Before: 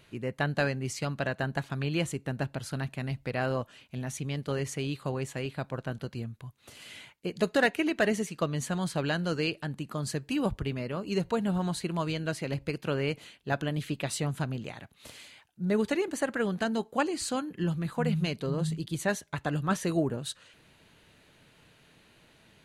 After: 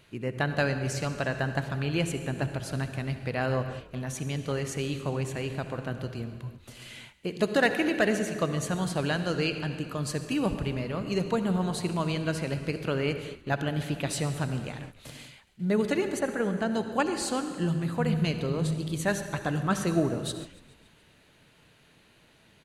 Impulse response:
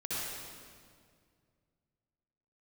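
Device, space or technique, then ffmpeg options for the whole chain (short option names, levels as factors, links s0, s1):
keyed gated reverb: -filter_complex "[0:a]asettb=1/sr,asplit=3[s0][s1][s2];[s0]atrim=end=16.194[s3];[s1]atrim=start=16.19:end=16.71,asetpts=PTS-STARTPTS,afade=t=in:d=0.004:c=qsin,afade=t=out:st=0.516:d=0.004:c=qsin,highshelf=f=2600:g=-10.5[s4];[s2]atrim=start=16.706[s5];[s3][s4]acrossfade=d=0.004:c1=hsin:c2=qsin[s6];[s6][s5]acrossfade=d=0.004:c1=qsin:c2=hsin,asplit=3[s7][s8][s9];[1:a]atrim=start_sample=2205[s10];[s8][s10]afir=irnorm=-1:irlink=0[s11];[s9]apad=whole_len=998628[s12];[s11][s12]sidechaingate=range=0.0224:threshold=0.00316:ratio=16:detection=peak,volume=0.266[s13];[s7][s13]amix=inputs=2:normalize=0,asplit=6[s14][s15][s16][s17][s18][s19];[s15]adelay=141,afreqshift=-38,volume=0.0891[s20];[s16]adelay=282,afreqshift=-76,volume=0.0543[s21];[s17]adelay=423,afreqshift=-114,volume=0.0331[s22];[s18]adelay=564,afreqshift=-152,volume=0.0202[s23];[s19]adelay=705,afreqshift=-190,volume=0.0123[s24];[s14][s20][s21][s22][s23][s24]amix=inputs=6:normalize=0"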